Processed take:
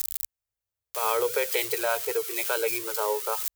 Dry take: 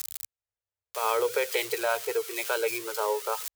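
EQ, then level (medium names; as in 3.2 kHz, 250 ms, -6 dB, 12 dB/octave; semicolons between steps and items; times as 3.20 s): bass shelf 73 Hz +11 dB; treble shelf 9.1 kHz +8 dB; 0.0 dB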